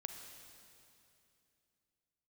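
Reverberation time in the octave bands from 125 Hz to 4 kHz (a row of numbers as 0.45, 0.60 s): 3.2, 3.2, 2.9, 2.6, 2.6, 2.6 s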